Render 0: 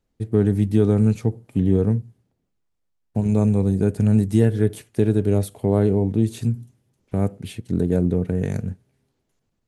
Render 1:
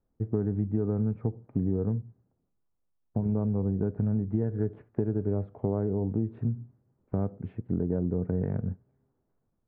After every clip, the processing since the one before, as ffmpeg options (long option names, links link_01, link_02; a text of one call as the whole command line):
ffmpeg -i in.wav -af "acompressor=threshold=-21dB:ratio=6,lowpass=frequency=1400:width=0.5412,lowpass=frequency=1400:width=1.3066,volume=-3dB" out.wav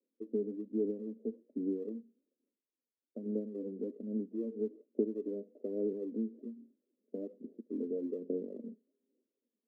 ffmpeg -i in.wav -af "asuperpass=centerf=360:order=12:qfactor=1,aphaser=in_gain=1:out_gain=1:delay=4.7:decay=0.48:speed=1.2:type=sinusoidal,volume=-6dB" out.wav